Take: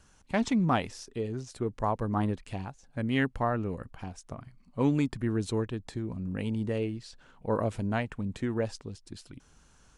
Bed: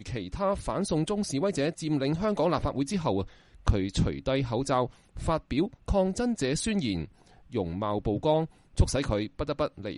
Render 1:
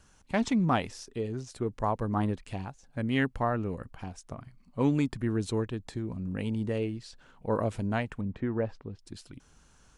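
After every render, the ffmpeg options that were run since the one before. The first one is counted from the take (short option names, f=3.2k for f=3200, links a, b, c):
-filter_complex "[0:a]asettb=1/sr,asplit=3[a][b][c];[a]atrim=end=8.214[d];[b]atrim=start=8.21:end=8.99,asetpts=PTS-STARTPTS,afade=t=in:d=0.004:c=qsin,afade=t=out:st=0.776:d=0.004:c=qsin,lowpass=1.9k[e];[c]atrim=start=8.986[f];[d][e]acrossfade=d=0.004:c1=hsin:c2=qsin[g];[g][f]acrossfade=d=0.004:c1=qsin:c2=hsin"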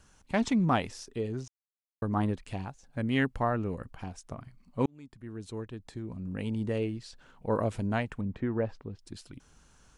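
-filter_complex "[0:a]asplit=4[a][b][c][d];[a]atrim=end=1.48,asetpts=PTS-STARTPTS,afade=t=out:st=1.476:d=0.004:c=hsin[e];[b]atrim=start=1.48:end=2.02,asetpts=PTS-STARTPTS,volume=0[f];[c]atrim=start=2.02:end=4.86,asetpts=PTS-STARTPTS,afade=t=in:d=0.004:c=hsin,afade=t=out:st=2.836:d=0.004:c=hsin[g];[d]atrim=start=4.86,asetpts=PTS-STARTPTS,afade=t=in:d=1.89[h];[e][f][g][h]concat=n=4:v=0:a=1"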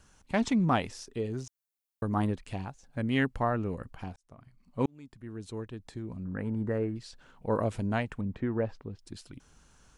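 -filter_complex "[0:a]asettb=1/sr,asplit=3[a][b][c];[a]atrim=end=1.314[d];[b]atrim=start=1.31:end=2.28,asetpts=PTS-STARTPTS,afade=t=in:d=0.004:c=qsin,afade=t=out:st=0.966:d=0.004:c=qsin,highshelf=f=8.4k:g=9.5[e];[c]atrim=start=2.276[f];[d][e]acrossfade=d=0.004:c1=hsin:c2=qsin[g];[g][f]acrossfade=d=0.004:c1=qsin:c2=hsin,asettb=1/sr,asplit=3[h][i][j];[h]atrim=end=6.244[k];[i]atrim=start=6.24:end=6.96,asetpts=PTS-STARTPTS,afade=t=in:d=0.004:c=qsin,afade=t=out:st=0.716:d=0.004:c=qsin,highshelf=f=2.2k:t=q:w=3:g=-11.5[l];[j]atrim=start=6.956[m];[k][l]acrossfade=d=0.004:c1=hsin:c2=qsin[n];[n][m]acrossfade=d=0.004:c1=qsin:c2=hsin,asplit=2[o][p];[o]atrim=end=4.16,asetpts=PTS-STARTPTS,afade=t=out:st=4.156:d=0.004:c=hsin[q];[p]atrim=start=4.16,asetpts=PTS-STARTPTS,afade=t=in:d=0.72[r];[q][r]concat=n=2:v=0:a=1"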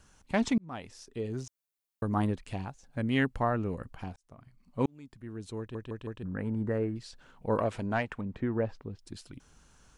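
-filter_complex "[0:a]asettb=1/sr,asplit=3[a][b][c];[a]atrim=end=7.584[d];[b]atrim=start=7.58:end=8.34,asetpts=PTS-STARTPTS,afade=t=in:d=0.004:c=qsin,afade=t=out:st=0.756:d=0.004:c=qsin,asplit=2[e][f];[f]highpass=f=720:p=1,volume=10dB,asoftclip=type=tanh:threshold=-16.5dB[g];[e][g]amix=inputs=2:normalize=0,lowpass=f=2.8k:p=1,volume=-6dB[h];[c]atrim=start=8.336[i];[d][h]acrossfade=d=0.004:c1=hsin:c2=qsin[j];[j][i]acrossfade=d=0.004:c1=qsin:c2=hsin,asplit=6[k][l][m][n][o][p];[k]atrim=end=0.58,asetpts=PTS-STARTPTS,afade=t=out:st=0.576:d=0.004:c=hsin[q];[l]atrim=start=0.58:end=5.752,asetpts=PTS-STARTPTS,afade=t=in:d=0.82[r];[m]atrim=start=5.588:end=5.752[s];[n]atrim=start=5.588:end=5.752[t];[o]atrim=start=5.588:end=5.752[u];[p]atrim=start=6.228[v];[q][r]concat=n=2:v=0:a=1[w];[w][s]acrossfade=d=0.004:c1=hsin:c2=hsin[x];[x][t]acrossfade=d=0.004:c1=hsin:c2=hsin[y];[y][u]acrossfade=d=0.004:c1=hsin:c2=hsin[z];[z][v]acrossfade=d=0.004:c1=hsin:c2=hsin"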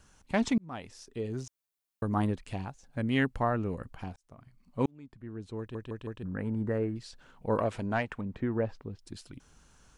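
-filter_complex "[0:a]asettb=1/sr,asplit=3[a][b][c];[a]atrim=end=4.914[d];[b]atrim=start=4.91:end=5.59,asetpts=PTS-STARTPTS,afade=t=in:d=0.004:c=qsin,afade=t=out:st=0.676:d=0.004:c=qsin,lowpass=f=2.2k:p=1[e];[c]atrim=start=5.586[f];[d][e]acrossfade=d=0.004:c1=hsin:c2=qsin[g];[g][f]acrossfade=d=0.004:c1=qsin:c2=hsin"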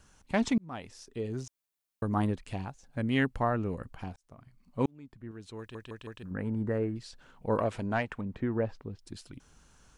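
-filter_complex "[0:a]asettb=1/sr,asplit=3[a][b][c];[a]atrim=end=5.314[d];[b]atrim=start=5.31:end=6.31,asetpts=PTS-STARTPTS,afade=t=in:d=0.004:c=qsin,afade=t=out:st=0.996:d=0.004:c=qsin,tiltshelf=f=1.1k:g=-6[e];[c]atrim=start=6.306[f];[d][e]acrossfade=d=0.004:c1=hsin:c2=qsin[g];[g][f]acrossfade=d=0.004:c1=qsin:c2=hsin"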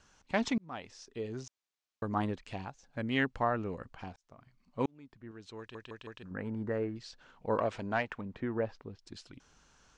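-af "lowpass=f=6.8k:w=0.5412,lowpass=f=6.8k:w=1.3066,lowshelf=f=280:g=-8"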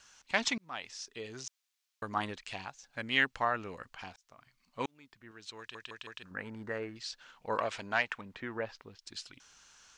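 -af "tiltshelf=f=890:g=-9"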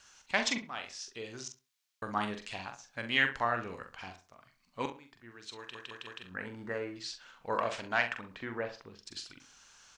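-filter_complex "[0:a]asplit=2[a][b];[b]adelay=43,volume=-7.5dB[c];[a][c]amix=inputs=2:normalize=0,asplit=2[d][e];[e]adelay=67,lowpass=f=2.1k:p=1,volume=-11.5dB,asplit=2[f][g];[g]adelay=67,lowpass=f=2.1k:p=1,volume=0.27,asplit=2[h][i];[i]adelay=67,lowpass=f=2.1k:p=1,volume=0.27[j];[d][f][h][j]amix=inputs=4:normalize=0"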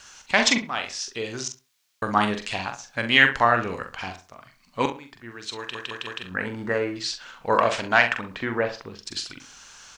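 -af "volume=12dB,alimiter=limit=-3dB:level=0:latency=1"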